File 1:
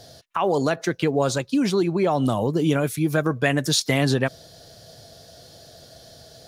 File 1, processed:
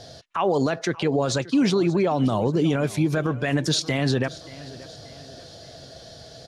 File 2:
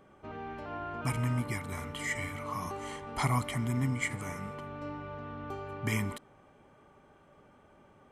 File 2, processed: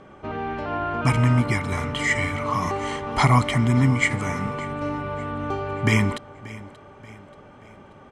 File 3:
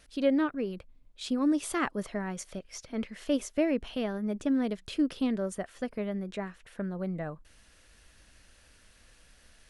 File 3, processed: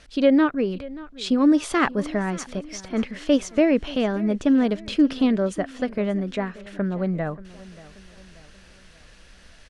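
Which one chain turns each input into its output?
low-pass 6.4 kHz 12 dB/octave; peak limiter -17 dBFS; feedback delay 582 ms, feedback 46%, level -19 dB; normalise loudness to -23 LUFS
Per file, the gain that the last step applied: +3.5 dB, +12.5 dB, +9.0 dB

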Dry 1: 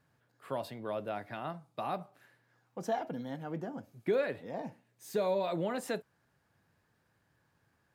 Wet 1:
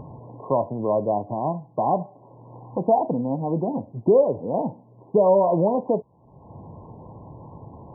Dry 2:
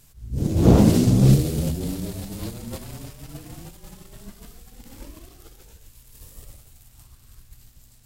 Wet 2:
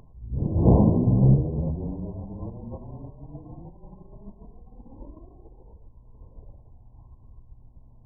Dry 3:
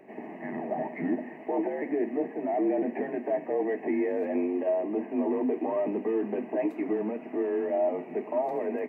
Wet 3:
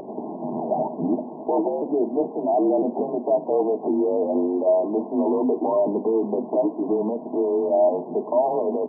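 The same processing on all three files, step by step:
dynamic bell 290 Hz, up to -4 dB, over -38 dBFS, Q 1.2; upward compressor, threshold -39 dBFS; brick-wall FIR low-pass 1.1 kHz; normalise loudness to -23 LUFS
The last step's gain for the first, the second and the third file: +15.0 dB, -1.5 dB, +9.0 dB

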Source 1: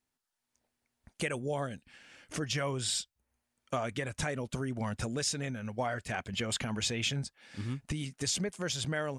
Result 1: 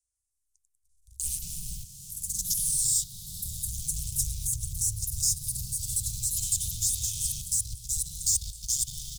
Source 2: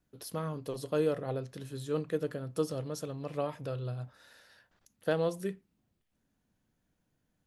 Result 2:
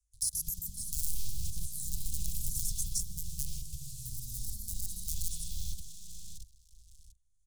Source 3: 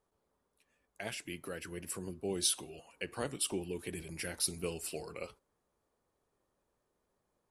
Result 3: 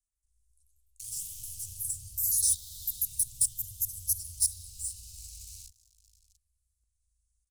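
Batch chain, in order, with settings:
resampled via 22.05 kHz; in parallel at -8 dB: bit crusher 4-bit; on the sum: tilt shelf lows -3 dB, about 1.1 kHz; spring tank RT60 2.7 s, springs 37/57 ms, chirp 65 ms, DRR -7 dB; level held to a coarse grid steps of 15 dB; waveshaping leveller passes 3; inverse Chebyshev band-stop 260–1800 Hz, stop band 70 dB; ever faster or slower copies 154 ms, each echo +2 st, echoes 3; three bands compressed up and down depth 40%; peak normalisation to -12 dBFS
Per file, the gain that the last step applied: +5.0 dB, +9.0 dB, +3.5 dB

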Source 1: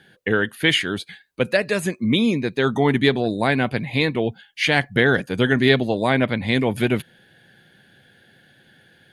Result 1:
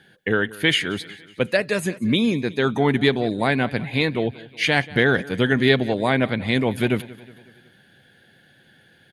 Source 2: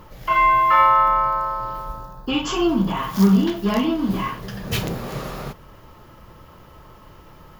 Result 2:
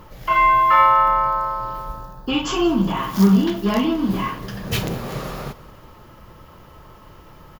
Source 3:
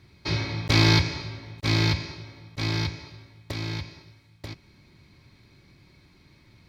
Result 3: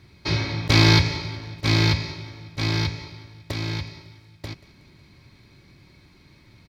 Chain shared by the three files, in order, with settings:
feedback delay 184 ms, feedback 54%, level -20 dB; peak normalisation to -3 dBFS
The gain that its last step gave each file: -1.0 dB, +1.0 dB, +3.0 dB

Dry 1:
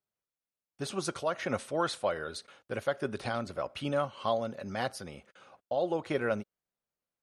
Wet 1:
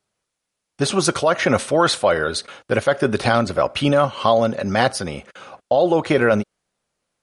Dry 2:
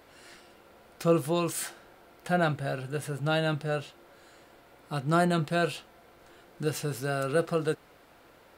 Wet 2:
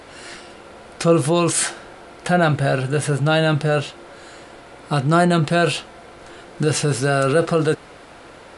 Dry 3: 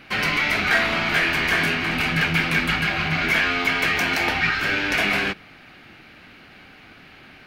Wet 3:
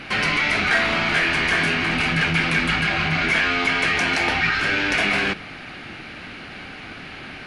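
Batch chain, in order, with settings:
in parallel at -2 dB: compressor with a negative ratio -32 dBFS, ratio -1; on the sum: MP3 160 kbps 24 kHz; normalise loudness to -19 LUFS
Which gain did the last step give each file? +11.0 dB, +8.0 dB, -0.5 dB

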